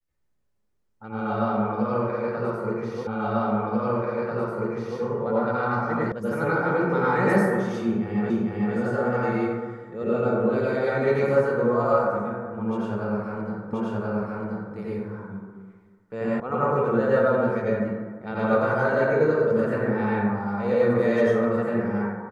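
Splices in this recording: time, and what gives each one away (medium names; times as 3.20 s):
3.07 s: repeat of the last 1.94 s
6.12 s: sound stops dead
8.30 s: repeat of the last 0.45 s
13.73 s: repeat of the last 1.03 s
16.40 s: sound stops dead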